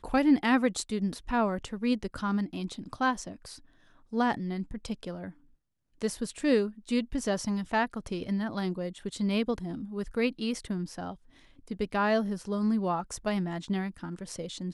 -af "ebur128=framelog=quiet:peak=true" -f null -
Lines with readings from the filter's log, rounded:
Integrated loudness:
  I:         -30.7 LUFS
  Threshold: -41.2 LUFS
Loudness range:
  LRA:         3.5 LU
  Threshold: -51.8 LUFS
  LRA low:   -34.0 LUFS
  LRA high:  -30.4 LUFS
True peak:
  Peak:      -12.5 dBFS